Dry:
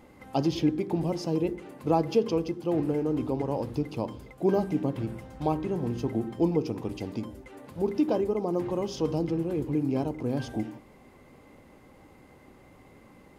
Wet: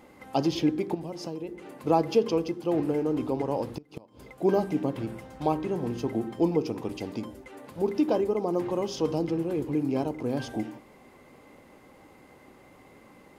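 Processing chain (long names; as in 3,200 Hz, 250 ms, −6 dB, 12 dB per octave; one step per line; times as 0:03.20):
0:00.94–0:01.75: downward compressor 12 to 1, threshold −32 dBFS, peak gain reduction 10.5 dB
0:03.74–0:04.29: gate with flip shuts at −22 dBFS, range −24 dB
low-shelf EQ 160 Hz −9.5 dB
level +2.5 dB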